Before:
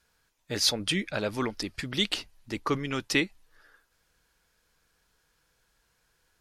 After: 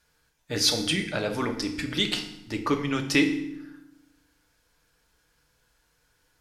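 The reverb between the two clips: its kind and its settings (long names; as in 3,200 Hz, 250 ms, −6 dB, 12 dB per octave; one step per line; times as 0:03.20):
feedback delay network reverb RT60 0.81 s, low-frequency decay 1.6×, high-frequency decay 0.85×, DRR 4 dB
level +1 dB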